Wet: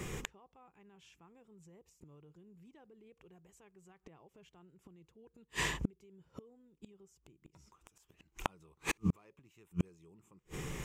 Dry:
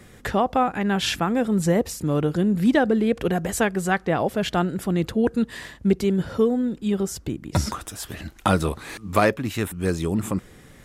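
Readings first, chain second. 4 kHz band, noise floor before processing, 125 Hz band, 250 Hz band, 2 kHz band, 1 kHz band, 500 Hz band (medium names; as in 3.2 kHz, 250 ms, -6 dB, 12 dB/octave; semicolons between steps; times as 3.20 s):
-16.5 dB, -49 dBFS, -18.5 dB, -23.5 dB, -16.0 dB, -23.0 dB, -28.5 dB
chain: rippled EQ curve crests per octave 0.73, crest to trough 9 dB; peak limiter -15 dBFS, peak gain reduction 10 dB; inverted gate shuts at -24 dBFS, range -42 dB; trim +5 dB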